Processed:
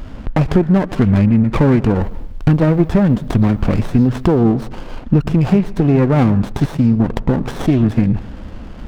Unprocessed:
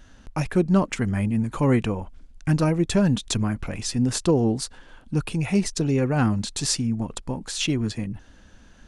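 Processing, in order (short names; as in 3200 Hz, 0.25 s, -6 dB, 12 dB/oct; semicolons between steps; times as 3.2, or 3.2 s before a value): compressor 6:1, threshold -30 dBFS, peak gain reduction 15 dB; 2.01–4.38 added noise violet -55 dBFS; air absorption 370 m; plate-style reverb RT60 0.67 s, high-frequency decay 0.55×, pre-delay 0.105 s, DRR 18.5 dB; maximiser +22 dB; running maximum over 17 samples; gain -1 dB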